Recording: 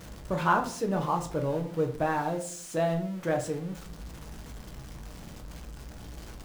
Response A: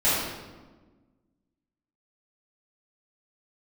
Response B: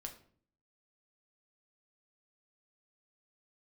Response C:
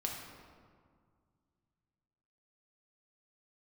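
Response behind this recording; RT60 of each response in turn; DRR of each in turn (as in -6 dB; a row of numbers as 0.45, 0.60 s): B; 1.3, 0.50, 2.0 s; -13.5, 3.0, -1.0 dB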